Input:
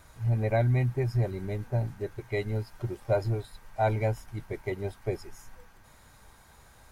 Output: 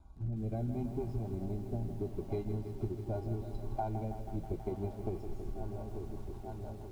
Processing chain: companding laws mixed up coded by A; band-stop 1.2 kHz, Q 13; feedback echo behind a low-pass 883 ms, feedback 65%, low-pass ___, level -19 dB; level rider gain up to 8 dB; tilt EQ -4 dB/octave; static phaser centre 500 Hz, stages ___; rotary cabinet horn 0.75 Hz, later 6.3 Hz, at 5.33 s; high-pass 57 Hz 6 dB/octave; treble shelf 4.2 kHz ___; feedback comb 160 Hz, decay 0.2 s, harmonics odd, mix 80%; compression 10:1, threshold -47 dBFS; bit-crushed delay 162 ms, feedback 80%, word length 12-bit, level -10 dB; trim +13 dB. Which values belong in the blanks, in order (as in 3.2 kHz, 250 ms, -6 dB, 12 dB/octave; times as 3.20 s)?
1.3 kHz, 6, -5.5 dB